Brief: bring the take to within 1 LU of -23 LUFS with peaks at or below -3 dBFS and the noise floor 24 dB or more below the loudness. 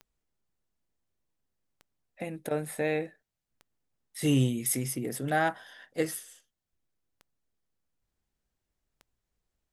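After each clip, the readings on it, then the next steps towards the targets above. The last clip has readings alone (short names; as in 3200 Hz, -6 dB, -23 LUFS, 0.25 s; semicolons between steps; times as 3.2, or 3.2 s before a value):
clicks 6; loudness -30.5 LUFS; peak -14.0 dBFS; loudness target -23.0 LUFS
-> de-click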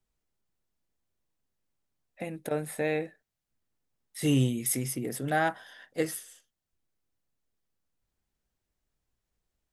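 clicks 0; loudness -30.5 LUFS; peak -14.0 dBFS; loudness target -23.0 LUFS
-> gain +7.5 dB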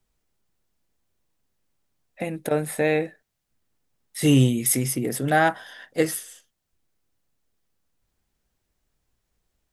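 loudness -23.0 LUFS; peak -6.5 dBFS; noise floor -78 dBFS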